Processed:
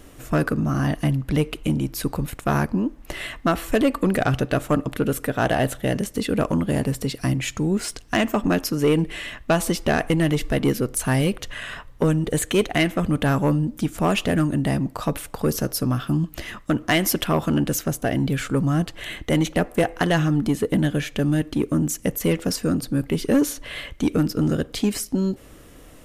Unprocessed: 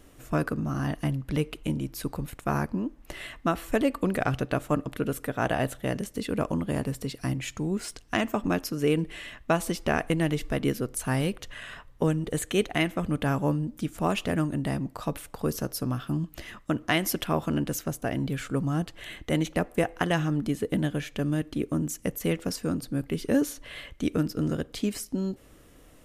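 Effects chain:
soft clipping −19 dBFS, distortion −15 dB
level +8 dB

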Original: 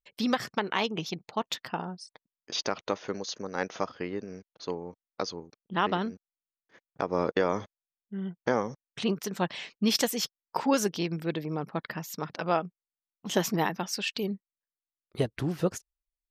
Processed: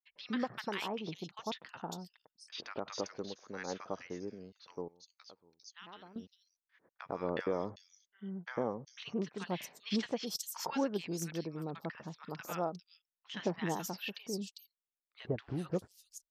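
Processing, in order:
0:04.78–0:06.06: first-order pre-emphasis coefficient 0.9
three-band delay without the direct sound mids, lows, highs 100/400 ms, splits 1,200/4,500 Hz
level −7.5 dB

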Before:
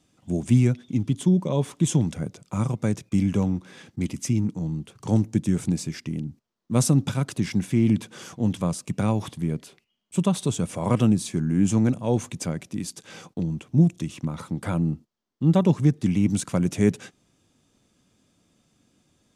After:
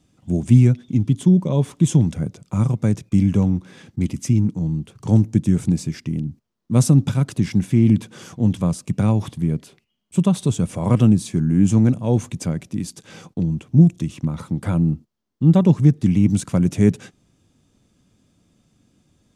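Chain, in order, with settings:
low-shelf EQ 240 Hz +9 dB

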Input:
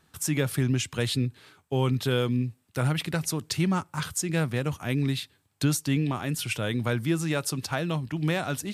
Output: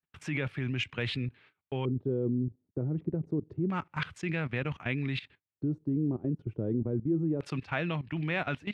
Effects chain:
output level in coarse steps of 16 dB
auto-filter low-pass square 0.27 Hz 370–2,400 Hz
noise gate −56 dBFS, range −23 dB

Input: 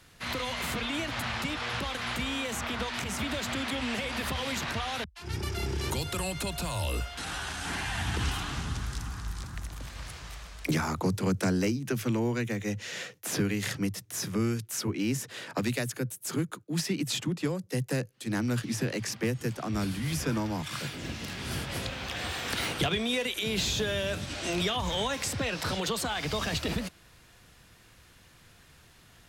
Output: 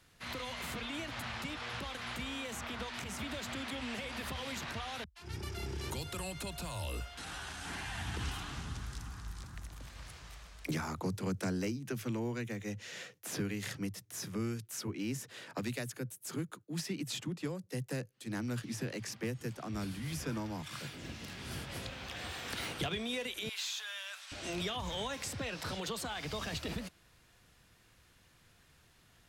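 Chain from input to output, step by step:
0:23.49–0:24.32: high-pass filter 1,000 Hz 24 dB per octave
level −8 dB

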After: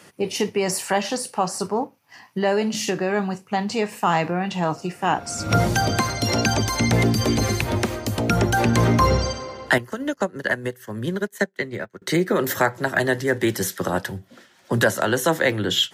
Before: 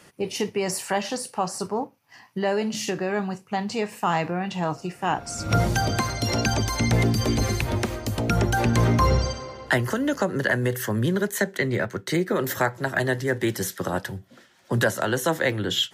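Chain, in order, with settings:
high-pass filter 76 Hz
parametric band 130 Hz −5.5 dB 0.22 octaves
0:09.78–0:12.02: expander for the loud parts 2.5 to 1, over −40 dBFS
level +3.5 dB

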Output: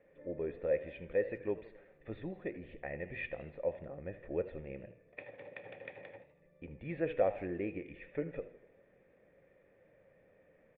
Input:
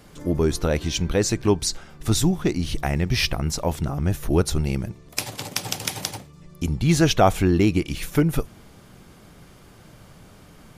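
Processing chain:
formant resonators in series e
low-shelf EQ 160 Hz −7 dB
hum removal 122.4 Hz, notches 30
far-end echo of a speakerphone 170 ms, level −28 dB
feedback echo with a swinging delay time 81 ms, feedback 52%, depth 114 cents, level −16 dB
level −2 dB

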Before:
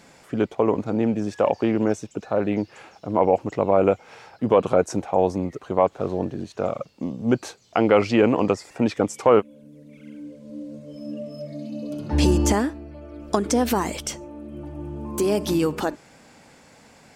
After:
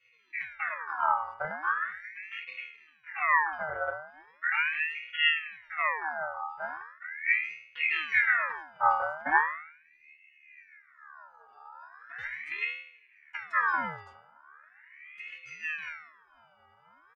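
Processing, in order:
resonances in every octave A#, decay 0.64 s
pitch-shifted copies added −7 semitones −4 dB
ring modulator whose carrier an LFO sweeps 1,700 Hz, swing 40%, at 0.39 Hz
level +6.5 dB

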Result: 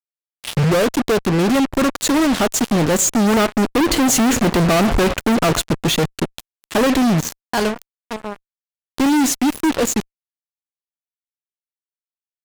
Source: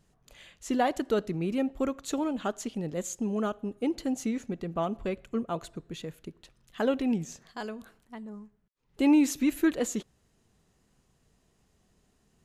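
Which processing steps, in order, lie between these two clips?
turntable start at the beginning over 1.10 s
source passing by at 0:04.63, 6 m/s, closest 3.9 metres
fuzz pedal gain 58 dB, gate −53 dBFS

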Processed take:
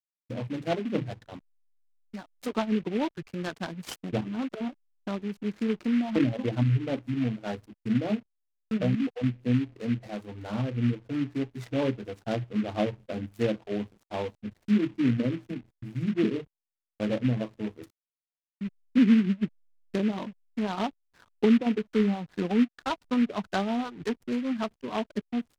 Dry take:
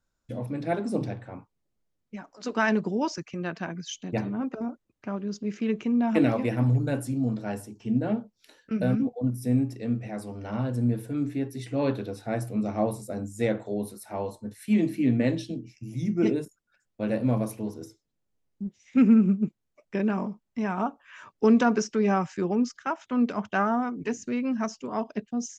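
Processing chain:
treble cut that deepens with the level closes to 410 Hz, closed at −19 dBFS
downward expander −40 dBFS
reverb reduction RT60 0.75 s
treble cut that deepens with the level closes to 1,200 Hz, closed at −24 dBFS
0:21.66–0:23.14: comb filter 4.1 ms, depth 43%
slack as between gear wheels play −48 dBFS
short delay modulated by noise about 2,000 Hz, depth 0.061 ms

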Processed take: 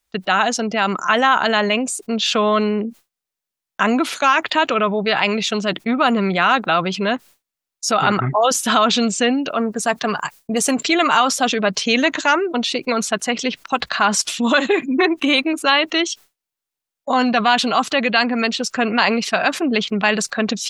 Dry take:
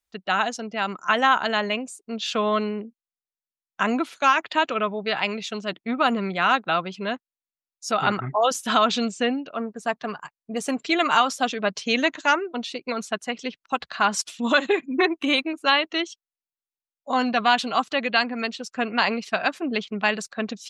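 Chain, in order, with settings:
downward expander −46 dBFS
0:09.18–0:10.89: high-shelf EQ 4,300 Hz +7.5 dB
envelope flattener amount 50%
level +2.5 dB

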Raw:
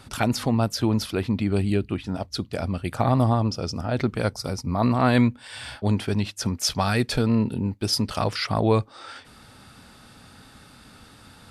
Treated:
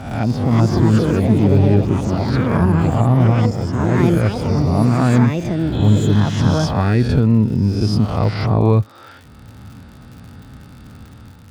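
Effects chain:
peak hold with a rise ahead of every peak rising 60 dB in 0.87 s
high-pass filter 71 Hz
healed spectral selection 0:05.75–0:06.63, 1,300–4,200 Hz after
delay with pitch and tempo change per echo 433 ms, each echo +6 semitones, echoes 2
automatic gain control gain up to 6 dB
RIAA equalisation playback
surface crackle 81 per second −28 dBFS
level −5 dB

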